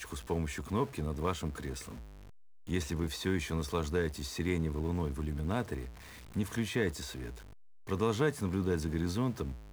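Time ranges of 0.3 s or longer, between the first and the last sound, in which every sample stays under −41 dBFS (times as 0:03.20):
0:01.97–0:02.69
0:05.88–0:06.36
0:07.33–0:07.89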